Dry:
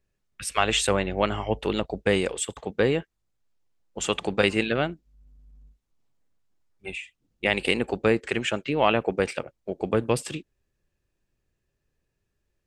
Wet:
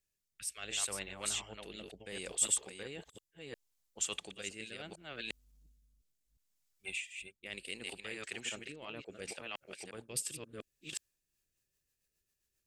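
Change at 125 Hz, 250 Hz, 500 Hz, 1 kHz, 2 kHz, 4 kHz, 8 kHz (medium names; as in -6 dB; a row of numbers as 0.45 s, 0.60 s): -22.5 dB, -22.5 dB, -23.0 dB, -22.5 dB, -14.5 dB, -11.0 dB, -1.0 dB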